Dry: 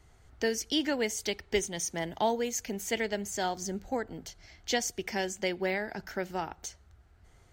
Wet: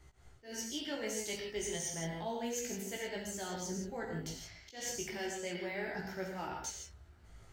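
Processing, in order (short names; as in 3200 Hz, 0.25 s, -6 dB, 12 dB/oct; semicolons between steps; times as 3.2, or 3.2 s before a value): reverse; compressor, threshold -37 dBFS, peak gain reduction 14 dB; reverse; non-linear reverb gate 0.19 s flat, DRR 0 dB; auto swell 0.163 s; chorus 0.31 Hz, delay 15.5 ms, depth 3.7 ms; gain +1.5 dB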